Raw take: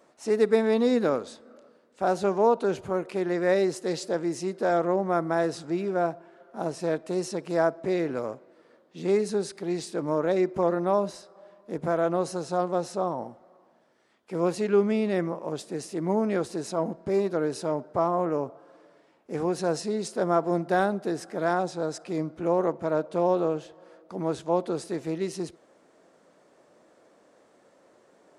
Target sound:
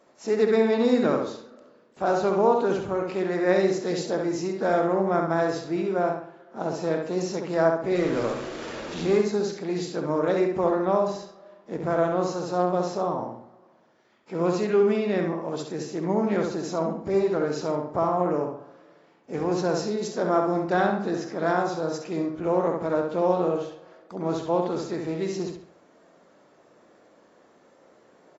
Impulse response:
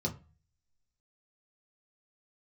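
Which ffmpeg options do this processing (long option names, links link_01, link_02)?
-filter_complex "[0:a]asettb=1/sr,asplit=3[link_01][link_02][link_03];[link_01]atrim=end=7.954[link_04];[link_02]atrim=start=7.95:end=9.21,asetpts=PTS-STARTPTS,afade=type=in:duration=0.004:curve=qsin,afade=type=out:start_time=1.256:duration=0.004:curve=qsin,aeval=exprs='val(0)+0.5*0.0237*sgn(val(0))':channel_layout=same[link_05];[link_03]atrim=start=9.206[link_06];[link_04][link_05]acrossfade=duration=0.004:curve1=hsin:curve2=qsin[link_07];[link_07][link_06]acrossfade=duration=0.004:curve1=qsin:curve2=hsin,asplit=2[link_08][link_09];[link_09]adelay=67,lowpass=frequency=4300:poles=1,volume=-3.5dB,asplit=2[link_10][link_11];[link_11]adelay=67,lowpass=frequency=4300:poles=1,volume=0.43,asplit=2[link_12][link_13];[link_13]adelay=67,lowpass=frequency=4300:poles=1,volume=0.43,asplit=2[link_14][link_15];[link_15]adelay=67,lowpass=frequency=4300:poles=1,volume=0.43,asplit=2[link_16][link_17];[link_17]adelay=67,lowpass=frequency=4300:poles=1,volume=0.43[link_18];[link_10][link_12][link_14][link_16][link_18]amix=inputs=5:normalize=0[link_19];[link_08][link_19]amix=inputs=2:normalize=0" -ar 22050 -c:a aac -b:a 24k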